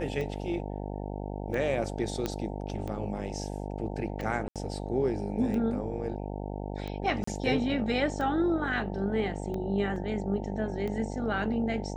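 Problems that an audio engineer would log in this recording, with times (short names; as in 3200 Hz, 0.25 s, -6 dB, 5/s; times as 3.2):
buzz 50 Hz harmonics 18 -36 dBFS
tick 45 rpm -24 dBFS
2.26 pop -16 dBFS
4.48–4.56 gap 77 ms
7.24–7.27 gap 34 ms
9.96 gap 2.6 ms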